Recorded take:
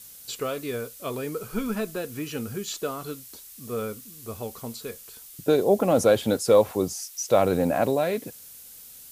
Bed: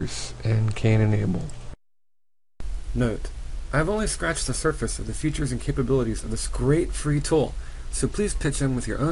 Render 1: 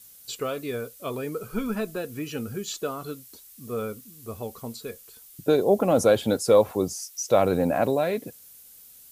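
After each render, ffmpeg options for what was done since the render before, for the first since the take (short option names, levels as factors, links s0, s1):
-af "afftdn=nr=6:nf=-46"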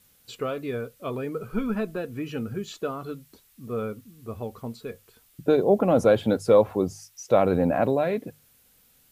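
-af "bass=f=250:g=3,treble=f=4000:g=-12,bandreject=f=50:t=h:w=6,bandreject=f=100:t=h:w=6,bandreject=f=150:t=h:w=6"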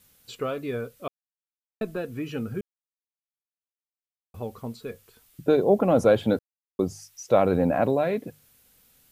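-filter_complex "[0:a]asplit=7[s0][s1][s2][s3][s4][s5][s6];[s0]atrim=end=1.08,asetpts=PTS-STARTPTS,afade=t=out:st=1.076:d=0.004:c=hsin[s7];[s1]atrim=start=1.08:end=1.81,asetpts=PTS-STARTPTS,volume=0[s8];[s2]atrim=start=1.81:end=2.61,asetpts=PTS-STARTPTS,afade=t=in:d=0.004:c=hsin,afade=t=out:st=0.796:d=0.004:c=hsin[s9];[s3]atrim=start=2.61:end=4.34,asetpts=PTS-STARTPTS,volume=0[s10];[s4]atrim=start=4.34:end=6.39,asetpts=PTS-STARTPTS,afade=t=in:d=0.004:c=hsin,afade=t=out:st=2.046:d=0.004:c=hsin[s11];[s5]atrim=start=6.39:end=6.79,asetpts=PTS-STARTPTS,volume=0[s12];[s6]atrim=start=6.79,asetpts=PTS-STARTPTS,afade=t=in:d=0.004:c=hsin[s13];[s7][s8][s9][s10][s11][s12][s13]concat=n=7:v=0:a=1"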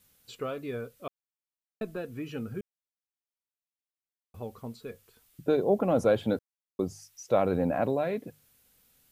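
-af "volume=0.562"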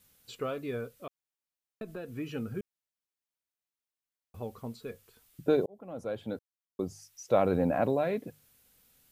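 -filter_complex "[0:a]asettb=1/sr,asplit=3[s0][s1][s2];[s0]atrim=end=1.004[s3];[s1]atrim=start=1:end=2.16,asetpts=PTS-STARTPTS,afade=t=in:d=0.004:c=qsin,afade=t=out:st=1.156:d=0.004:c=qsin,acompressor=threshold=0.0126:ratio=2.5:attack=3.2:release=140:knee=1:detection=peak[s4];[s2]atrim=start=2.156[s5];[s3][s4]acrossfade=d=0.004:c1=hsin:c2=qsin[s6];[s6][s5]acrossfade=d=0.004:c1=qsin:c2=hsin,asplit=2[s7][s8];[s7]atrim=end=5.66,asetpts=PTS-STARTPTS,afade=t=out:st=5.656:d=0.004:c=hsin[s9];[s8]atrim=start=5.66,asetpts=PTS-STARTPTS,afade=t=in:d=1.77[s10];[s9][s10]concat=n=2:v=0:a=1"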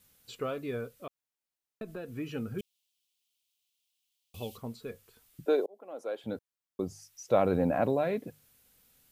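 -filter_complex "[0:a]asplit=3[s0][s1][s2];[s0]afade=t=out:st=2.58:d=0.02[s3];[s1]highshelf=f=2200:t=q:w=3:g=11,afade=t=in:st=2.58:d=0.02,afade=t=out:st=4.56:d=0.02[s4];[s2]afade=t=in:st=4.56:d=0.02[s5];[s3][s4][s5]amix=inputs=3:normalize=0,asettb=1/sr,asplit=3[s6][s7][s8];[s6]atrim=end=5.454[s9];[s7]atrim=start=5.45:end=6.24,asetpts=PTS-STARTPTS,afade=t=in:d=0.004:c=qsin,afade=t=out:st=0.786:d=0.004:c=qsin,highpass=f=330:w=0.5412,highpass=f=330:w=1.3066[s10];[s8]atrim=start=6.236[s11];[s9][s10]acrossfade=d=0.004:c1=hsin:c2=qsin[s12];[s12][s11]acrossfade=d=0.004:c1=qsin:c2=hsin"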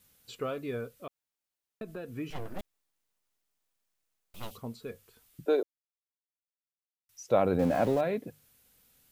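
-filter_complex "[0:a]asettb=1/sr,asplit=3[s0][s1][s2];[s0]atrim=end=2.304[s3];[s1]atrim=start=2.3:end=4.51,asetpts=PTS-STARTPTS,afade=t=in:d=0.004:c=qsin,afade=t=out:st=2.206:d=0.004:c=qsin,aeval=exprs='abs(val(0))':c=same[s4];[s2]atrim=start=4.506[s5];[s3][s4]acrossfade=d=0.004:c1=hsin:c2=qsin[s6];[s6][s5]acrossfade=d=0.004:c1=qsin:c2=hsin,asettb=1/sr,asplit=3[s7][s8][s9];[s7]atrim=end=7.594[s10];[s8]atrim=start=7.59:end=8.01,asetpts=PTS-STARTPTS,afade=t=in:d=0.004:c=qsin,afade=t=out:st=0.416:d=0.004:c=qsin,aeval=exprs='val(0)+0.5*0.0141*sgn(val(0))':c=same[s11];[s9]atrim=start=8.006[s12];[s10][s11]acrossfade=d=0.004:c1=hsin:c2=qsin[s13];[s13][s12]acrossfade=d=0.004:c1=qsin:c2=hsin,asplit=3[s14][s15][s16];[s14]atrim=end=5.63,asetpts=PTS-STARTPTS,afade=t=out:st=5.626:d=0.004:c=hsin[s17];[s15]atrim=start=5.63:end=7.09,asetpts=PTS-STARTPTS,volume=0[s18];[s16]atrim=start=7.09,asetpts=PTS-STARTPTS,afade=t=in:d=0.004:c=hsin[s19];[s17][s18][s19]concat=n=3:v=0:a=1"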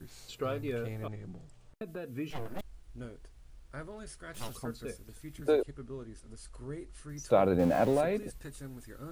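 -filter_complex "[1:a]volume=0.0891[s0];[0:a][s0]amix=inputs=2:normalize=0"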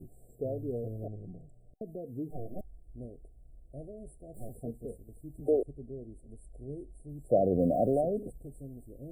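-af "afftfilt=real='re*(1-between(b*sr/4096,760,7400))':imag='im*(1-between(b*sr/4096,760,7400))':win_size=4096:overlap=0.75,highshelf=f=5100:t=q:w=3:g=-7.5"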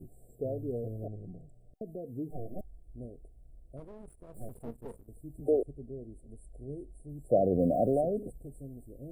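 -filter_complex "[0:a]asplit=3[s0][s1][s2];[s0]afade=t=out:st=3.76:d=0.02[s3];[s1]aeval=exprs='if(lt(val(0),0),0.251*val(0),val(0))':c=same,afade=t=in:st=3.76:d=0.02,afade=t=out:st=5.07:d=0.02[s4];[s2]afade=t=in:st=5.07:d=0.02[s5];[s3][s4][s5]amix=inputs=3:normalize=0"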